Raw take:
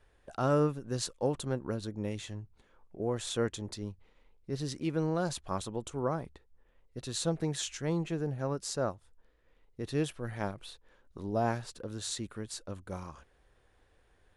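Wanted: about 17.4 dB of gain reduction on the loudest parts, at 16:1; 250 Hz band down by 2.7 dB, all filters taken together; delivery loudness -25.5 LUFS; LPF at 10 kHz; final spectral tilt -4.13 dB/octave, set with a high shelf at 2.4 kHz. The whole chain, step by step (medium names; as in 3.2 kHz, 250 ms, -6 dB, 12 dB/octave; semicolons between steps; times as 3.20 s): low-pass 10 kHz; peaking EQ 250 Hz -4 dB; treble shelf 2.4 kHz +3 dB; compression 16:1, threshold -42 dBFS; trim +22 dB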